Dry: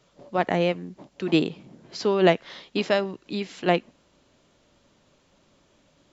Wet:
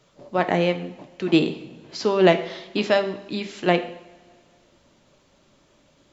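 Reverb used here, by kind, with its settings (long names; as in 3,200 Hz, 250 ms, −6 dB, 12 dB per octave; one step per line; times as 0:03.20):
coupled-rooms reverb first 0.66 s, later 2.2 s, from −18 dB, DRR 7.5 dB
level +2 dB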